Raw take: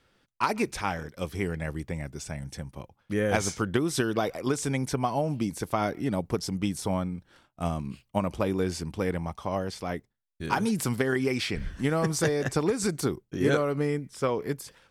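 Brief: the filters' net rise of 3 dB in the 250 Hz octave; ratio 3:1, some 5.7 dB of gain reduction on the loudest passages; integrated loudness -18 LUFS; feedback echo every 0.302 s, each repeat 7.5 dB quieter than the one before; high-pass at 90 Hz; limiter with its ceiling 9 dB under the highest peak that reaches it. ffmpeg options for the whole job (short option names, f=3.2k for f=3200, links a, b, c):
-af "highpass=90,equalizer=f=250:t=o:g=4,acompressor=threshold=-26dB:ratio=3,alimiter=limit=-22dB:level=0:latency=1,aecho=1:1:302|604|906|1208|1510:0.422|0.177|0.0744|0.0312|0.0131,volume=15dB"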